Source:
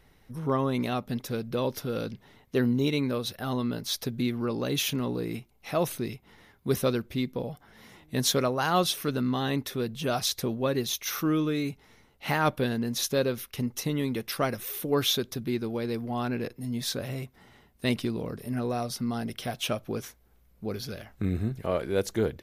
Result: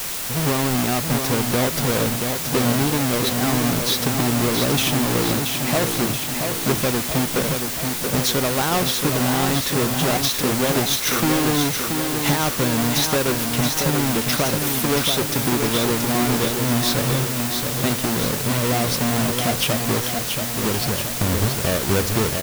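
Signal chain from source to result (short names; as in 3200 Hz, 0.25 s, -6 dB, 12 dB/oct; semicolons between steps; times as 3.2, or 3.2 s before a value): half-waves squared off; compressor, threshold -28 dBFS, peak gain reduction 12 dB; on a send: feedback echo 0.679 s, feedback 58%, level -5.5 dB; on the sum: requantised 6-bit, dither triangular; gain +8.5 dB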